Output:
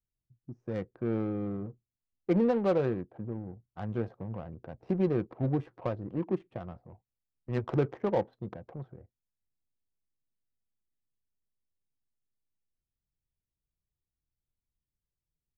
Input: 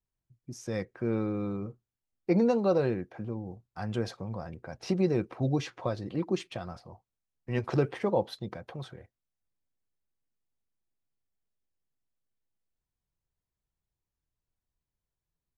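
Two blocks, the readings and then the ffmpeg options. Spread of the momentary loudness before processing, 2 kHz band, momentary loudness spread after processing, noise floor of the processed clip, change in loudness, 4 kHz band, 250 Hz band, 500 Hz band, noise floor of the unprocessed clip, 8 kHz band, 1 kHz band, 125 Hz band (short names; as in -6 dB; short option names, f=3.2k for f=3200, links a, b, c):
17 LU, -4.5 dB, 17 LU, under -85 dBFS, -1.0 dB, under -10 dB, -1.0 dB, -1.5 dB, under -85 dBFS, under -15 dB, -2.0 dB, -1.0 dB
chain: -af "adynamicsmooth=sensitivity=2.5:basefreq=520,volume=-1dB"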